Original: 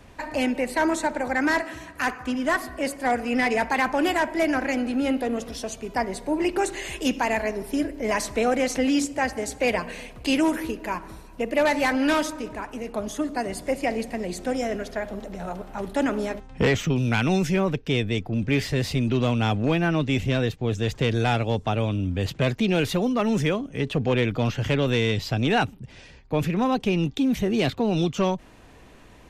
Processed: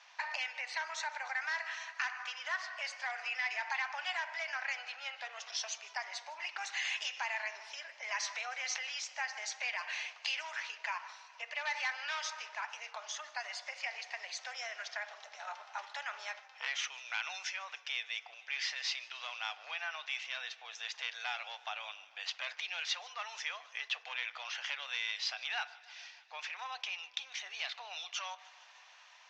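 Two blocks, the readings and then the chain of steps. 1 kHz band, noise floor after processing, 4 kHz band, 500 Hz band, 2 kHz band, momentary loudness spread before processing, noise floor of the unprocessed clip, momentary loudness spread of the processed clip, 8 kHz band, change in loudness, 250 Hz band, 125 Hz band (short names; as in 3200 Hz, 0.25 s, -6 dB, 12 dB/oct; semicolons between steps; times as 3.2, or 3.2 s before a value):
-14.5 dB, -59 dBFS, -5.5 dB, -28.0 dB, -7.5 dB, 9 LU, -48 dBFS, 8 LU, -7.5 dB, -13.5 dB, under -40 dB, under -40 dB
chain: limiter -19 dBFS, peak gain reduction 6 dB; elliptic low-pass 6000 Hz, stop band 60 dB; dynamic EQ 1900 Hz, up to +5 dB, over -43 dBFS, Q 0.73; compressor 3:1, threshold -30 dBFS, peak gain reduction 7.5 dB; steep high-pass 750 Hz 36 dB/oct; high shelf 2500 Hz +9.5 dB; FDN reverb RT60 0.79 s, high-frequency decay 0.4×, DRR 14 dB; warbling echo 0.152 s, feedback 74%, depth 80 cents, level -22.5 dB; gain -6.5 dB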